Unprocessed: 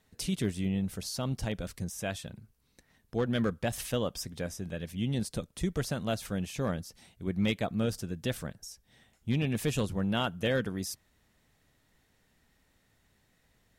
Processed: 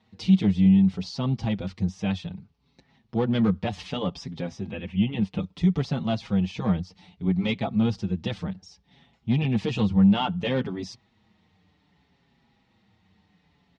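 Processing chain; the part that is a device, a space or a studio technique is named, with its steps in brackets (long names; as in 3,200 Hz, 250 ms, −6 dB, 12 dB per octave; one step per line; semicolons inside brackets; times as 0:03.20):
barber-pole flanger into a guitar amplifier (barber-pole flanger 5.8 ms −0.63 Hz; soft clipping −23.5 dBFS, distortion −19 dB; loudspeaker in its box 78–4,600 Hz, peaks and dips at 90 Hz +4 dB, 190 Hz +9 dB, 590 Hz −6 dB, 840 Hz +6 dB, 1,600 Hz −8 dB)
0:04.71–0:05.40: high shelf with overshoot 3,500 Hz −7.5 dB, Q 3
level +8 dB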